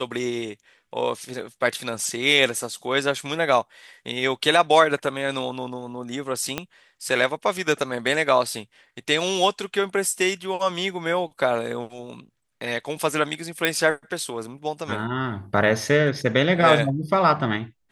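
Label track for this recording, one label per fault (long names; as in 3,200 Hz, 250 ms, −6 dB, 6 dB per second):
6.580000	6.580000	click −10 dBFS
13.650000	13.650000	click −5 dBFS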